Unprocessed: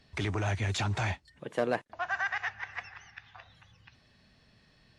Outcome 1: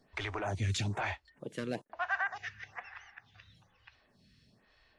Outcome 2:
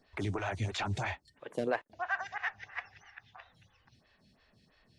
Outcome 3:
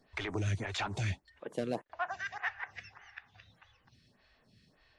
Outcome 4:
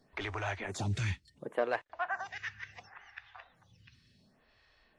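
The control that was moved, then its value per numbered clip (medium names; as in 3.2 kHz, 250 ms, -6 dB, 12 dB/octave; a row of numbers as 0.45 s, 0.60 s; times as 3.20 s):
lamp-driven phase shifter, rate: 1.1 Hz, 3 Hz, 1.7 Hz, 0.7 Hz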